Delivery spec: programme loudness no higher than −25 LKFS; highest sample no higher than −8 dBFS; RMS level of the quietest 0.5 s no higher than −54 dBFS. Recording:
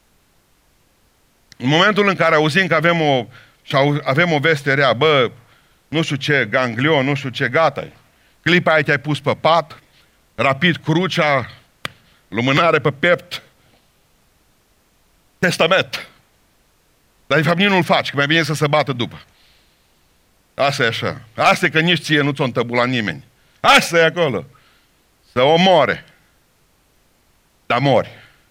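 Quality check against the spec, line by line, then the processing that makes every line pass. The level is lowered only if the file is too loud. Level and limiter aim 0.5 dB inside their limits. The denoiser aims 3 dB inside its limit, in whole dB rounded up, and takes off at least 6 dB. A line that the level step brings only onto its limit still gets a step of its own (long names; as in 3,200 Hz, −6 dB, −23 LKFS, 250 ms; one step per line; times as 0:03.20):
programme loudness −16.0 LKFS: out of spec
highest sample −2.5 dBFS: out of spec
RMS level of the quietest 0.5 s −58 dBFS: in spec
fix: level −9.5 dB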